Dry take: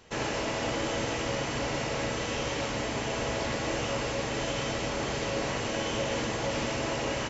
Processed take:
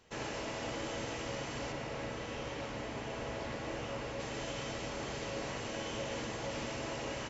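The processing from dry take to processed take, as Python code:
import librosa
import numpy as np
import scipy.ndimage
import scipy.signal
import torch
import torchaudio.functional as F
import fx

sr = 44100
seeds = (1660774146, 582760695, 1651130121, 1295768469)

y = fx.high_shelf(x, sr, hz=4500.0, db=-9.0, at=(1.72, 4.2))
y = y * librosa.db_to_amplitude(-8.5)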